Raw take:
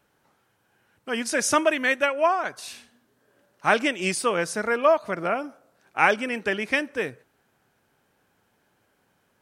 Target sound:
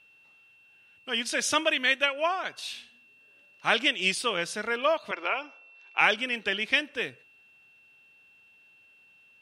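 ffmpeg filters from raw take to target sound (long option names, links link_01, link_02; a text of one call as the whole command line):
ffmpeg -i in.wav -filter_complex "[0:a]equalizer=frequency=3300:width_type=o:width=1.1:gain=15,aeval=exprs='val(0)+0.00355*sin(2*PI*2700*n/s)':channel_layout=same,asettb=1/sr,asplit=3[link_01][link_02][link_03];[link_01]atrim=end=5.114[link_04];[link_02]atrim=start=5.11:end=6.01,asetpts=PTS-STARTPTS,afade=type=in:duration=0.004:curve=qsin,afade=type=out:start_time=0.896:duration=0.004:curve=qsin,highpass=frequency=340:width=0.5412,highpass=frequency=340:width=1.3066,equalizer=frequency=630:width_type=q:width=4:gain=-4,equalizer=frequency=960:width_type=q:width=4:gain=8,equalizer=frequency=2500:width_type=q:width=4:gain=7,lowpass=frequency=6400:width=0.5412,lowpass=frequency=6400:width=1.3066[link_05];[link_03]atrim=start=6.006[link_06];[link_04][link_05]acrossfade=duration=0.004:curve1=hsin:curve2=qsin[link_07];[link_07][link_06]acrossfade=duration=0.004:curve1=qsin:curve2=hsin,volume=-7.5dB" out.wav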